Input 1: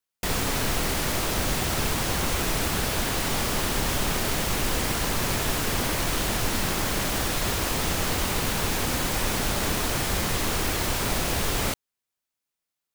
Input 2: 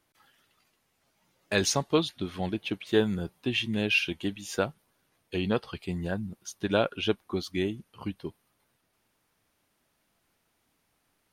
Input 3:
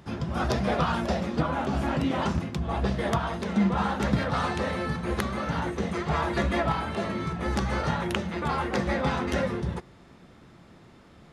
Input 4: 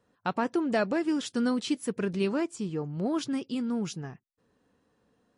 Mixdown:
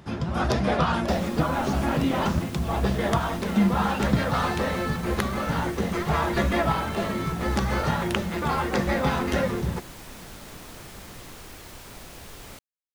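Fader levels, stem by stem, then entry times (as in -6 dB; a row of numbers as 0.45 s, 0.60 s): -17.0 dB, -17.0 dB, +2.5 dB, -13.5 dB; 0.85 s, 0.00 s, 0.00 s, 0.00 s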